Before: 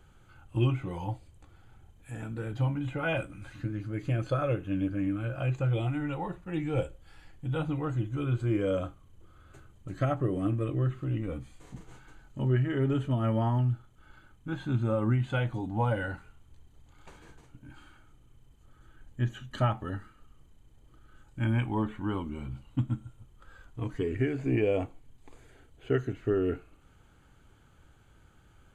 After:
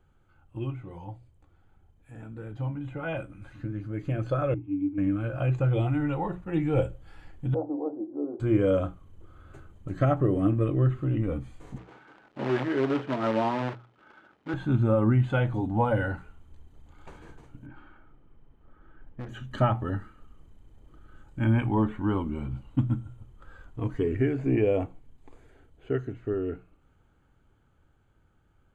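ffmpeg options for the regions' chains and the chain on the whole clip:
-filter_complex "[0:a]asettb=1/sr,asplit=3[s0][s1][s2];[s0]atrim=end=4.544[s3];[s1]atrim=start=4.54:end=4.98,asetpts=PTS-STARTPTS,afade=t=in:d=0.004:c=qsin,afade=t=out:st=0.436:d=0.004:c=qsin,asplit=3[s4][s5][s6];[s4]bandpass=f=300:t=q:w=8,volume=1[s7];[s5]bandpass=f=870:t=q:w=8,volume=0.501[s8];[s6]bandpass=f=2240:t=q:w=8,volume=0.355[s9];[s7][s8][s9]amix=inputs=3:normalize=0,equalizer=f=100:t=o:w=0.32:g=15[s10];[s2]atrim=start=4.976[s11];[s3][s10]acrossfade=d=0.004:c1=hsin:c2=qsin[s12];[s12][s11]acrossfade=d=0.004:c1=qsin:c2=hsin,asettb=1/sr,asplit=3[s13][s14][s15];[s13]atrim=end=7.544[s16];[s14]atrim=start=7.54:end=8.4,asetpts=PTS-STARTPTS,afade=t=in:d=0.004:c=qsin,afade=t=out:st=0.856:d=0.004:c=qsin,asuperpass=centerf=480:order=8:qfactor=0.86,bandreject=f=50:t=h:w=6,bandreject=f=100:t=h:w=6,bandreject=f=150:t=h:w=6,bandreject=f=200:t=h:w=6,bandreject=f=250:t=h:w=6,bandreject=f=300:t=h:w=6,bandreject=f=350:t=h:w=6,bandreject=f=400:t=h:w=6,bandreject=f=450:t=h:w=6[s17];[s15]atrim=start=8.396[s18];[s16][s17]acrossfade=d=0.004:c1=hsin:c2=qsin[s19];[s19][s18]acrossfade=d=0.004:c1=qsin:c2=hsin,asettb=1/sr,asplit=3[s20][s21][s22];[s20]atrim=end=11.784[s23];[s21]atrim=start=11.78:end=14.54,asetpts=PTS-STARTPTS,afade=t=in:d=0.004:c=qsin,afade=t=out:st=2.756:d=0.004:c=qsin,acrusher=bits=2:mode=log:mix=0:aa=0.000001,highpass=290,lowpass=3300[s24];[s22]atrim=start=14.536[s25];[s23][s24]acrossfade=d=0.004:c1=hsin:c2=qsin[s26];[s26][s25]acrossfade=d=0.004:c1=qsin:c2=hsin,asettb=1/sr,asplit=3[s27][s28][s29];[s27]atrim=end=17.664[s30];[s28]atrim=start=17.66:end=19.29,asetpts=PTS-STARTPTS,afade=t=in:d=0.004:c=qsin,afade=t=out:st=1.626:d=0.004:c=qsin,lowpass=2200,equalizer=f=65:t=o:w=2.6:g=-6,asoftclip=type=hard:threshold=0.0133[s31];[s29]atrim=start=19.286[s32];[s30][s31]acrossfade=d=0.004:c1=hsin:c2=qsin[s33];[s33][s32]acrossfade=d=0.004:c1=qsin:c2=hsin,dynaudnorm=f=480:g=17:m=3.98,highshelf=f=2400:g=-10.5,bandreject=f=60:t=h:w=6,bandreject=f=120:t=h:w=6,bandreject=f=180:t=h:w=6,volume=0.531"

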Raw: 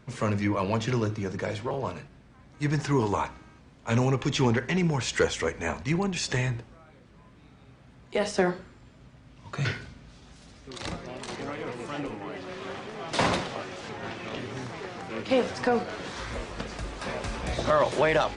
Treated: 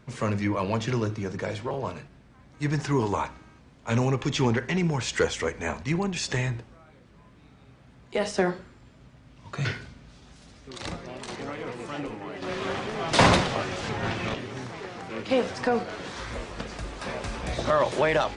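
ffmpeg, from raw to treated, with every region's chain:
-filter_complex "[0:a]asettb=1/sr,asplit=3[s0][s1][s2];[s0]atrim=end=12.424[s3];[s1]atrim=start=12.42:end=14.34,asetpts=PTS-STARTPTS,afade=t=in:d=0.004:c=qsin,afade=t=out:st=1.916:d=0.004:c=qsin,asubboost=boost=3:cutoff=190,acontrast=80[s4];[s2]atrim=start=14.336[s5];[s3][s4]acrossfade=d=0.004:c1=hsin:c2=qsin[s6];[s6][s5]acrossfade=d=0.004:c1=qsin:c2=hsin"

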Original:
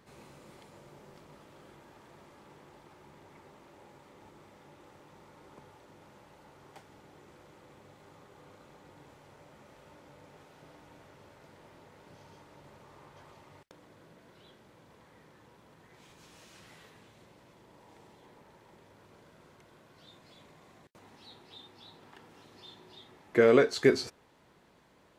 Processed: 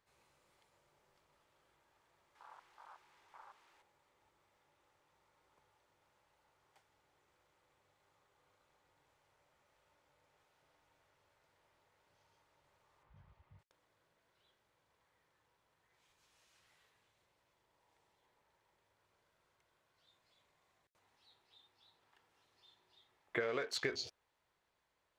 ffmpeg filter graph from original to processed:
-filter_complex "[0:a]asettb=1/sr,asplit=3[s0][s1][s2];[s0]atrim=end=2.354[s3];[s1]atrim=start=2.35:end=3.82,asetpts=PTS-STARTPTS,afade=t=in:d=0.004:c=qsin,afade=t=out:st=1.466:d=0.004:c=qsin,equalizer=f=600:w=4.3:g=-7.5,asplit=2[s4][s5];[s5]highpass=f=720:p=1,volume=11.2,asoftclip=type=tanh:threshold=0.00596[s6];[s4][s6]amix=inputs=2:normalize=0,lowpass=f=5300:p=1,volume=0.501[s7];[s2]atrim=start=3.816[s8];[s3][s7]acrossfade=d=0.004:c1=hsin:c2=qsin[s9];[s9][s8]acrossfade=d=0.004:c1=qsin:c2=hsin,asettb=1/sr,asplit=3[s10][s11][s12];[s10]atrim=end=13.034[s13];[s11]atrim=start=13.03:end=13.59,asetpts=PTS-STARTPTS,afade=t=in:d=0.004:c=qsin,afade=t=out:st=0.556:d=0.004:c=qsin,bass=f=250:g=6,treble=f=4000:g=-12,acompressor=mode=upward:threshold=0.00141:ratio=2.5:attack=3.2:release=140:knee=2.83:detection=peak[s14];[s12]atrim=start=13.586[s15];[s13][s14]acrossfade=d=0.004:c1=hsin:c2=qsin[s16];[s16][s15]acrossfade=d=0.004:c1=qsin:c2=hsin,equalizer=f=220:w=0.6:g=-14.5,afwtdn=0.00447,acompressor=threshold=0.0178:ratio=12,volume=1.19"

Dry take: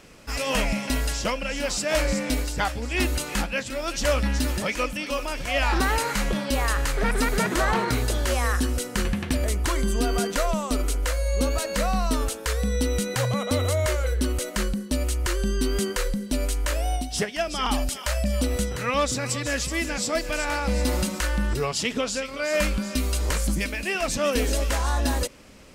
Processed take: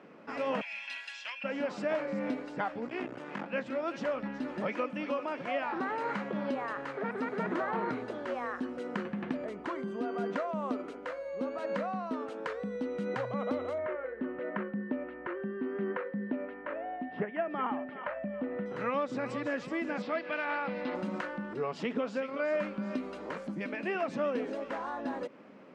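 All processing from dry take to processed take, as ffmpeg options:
-filter_complex "[0:a]asettb=1/sr,asplit=3[s0][s1][s2];[s0]atrim=end=0.614[s3];[s1]atrim=start=0.61:end=1.44,asetpts=PTS-STARTPTS,afade=t=in:d=0.004:c=qsin,afade=t=out:st=0.826:d=0.004:c=qsin,highpass=f=2700:t=q:w=2.1,aecho=1:1:1.2:0.46,atrim=end_sample=36603[s4];[s2]atrim=start=1.436[s5];[s3][s4]acrossfade=d=0.004:c1=hsin:c2=qsin[s6];[s6][s5]acrossfade=d=0.004:c1=qsin:c2=hsin,asettb=1/sr,asplit=3[s7][s8][s9];[s7]atrim=end=2.874[s10];[s8]atrim=start=2.87:end=3.46,asetpts=PTS-STARTPTS,afade=t=in:d=0.004:c=qsin,afade=t=out:st=0.586:d=0.004:c=qsin,lowpass=9200,bandreject=f=4100:w=6.4,aeval=exprs='max(val(0),0)':c=same[s11];[s9]atrim=start=3.456[s12];[s10][s11]acrossfade=d=0.004:c1=hsin:c2=qsin[s13];[s13][s12]acrossfade=d=0.004:c1=qsin:c2=hsin,asettb=1/sr,asplit=3[s14][s15][s16];[s14]atrim=end=13.784[s17];[s15]atrim=start=13.78:end=18.66,asetpts=PTS-STARTPTS,afade=t=in:d=0.004:c=qsin,afade=t=out:st=4.876:d=0.004:c=qsin,lowpass=f=2500:w=0.5412,lowpass=f=2500:w=1.3066,aeval=exprs='val(0)+0.00891*sin(2*PI*1800*n/s)':c=same[s18];[s16]atrim=start=18.656[s19];[s17][s18]acrossfade=d=0.004:c1=hsin:c2=qsin[s20];[s20][s19]acrossfade=d=0.004:c1=qsin:c2=hsin,asettb=1/sr,asplit=3[s21][s22][s23];[s21]atrim=end=20.024[s24];[s22]atrim=start=20.02:end=20.95,asetpts=PTS-STARTPTS,afade=t=in:d=0.004:c=qsin,afade=t=out:st=0.926:d=0.004:c=qsin,lowpass=f=4000:w=0.5412,lowpass=f=4000:w=1.3066,tiltshelf=f=1300:g=-6.5[s25];[s23]atrim=start=20.946[s26];[s24][s25]acrossfade=d=0.004:c1=hsin:c2=qsin[s27];[s27][s26]acrossfade=d=0.004:c1=qsin:c2=hsin,lowpass=1500,acompressor=threshold=0.0447:ratio=6,highpass=f=180:w=0.5412,highpass=f=180:w=1.3066,volume=0.891"

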